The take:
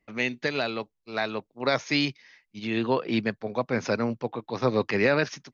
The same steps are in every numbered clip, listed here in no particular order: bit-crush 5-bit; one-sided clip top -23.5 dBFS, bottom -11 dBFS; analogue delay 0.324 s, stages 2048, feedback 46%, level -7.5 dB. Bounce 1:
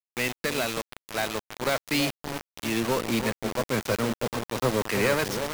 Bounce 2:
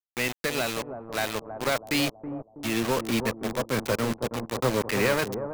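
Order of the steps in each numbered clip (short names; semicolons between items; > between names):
one-sided clip > analogue delay > bit-crush; one-sided clip > bit-crush > analogue delay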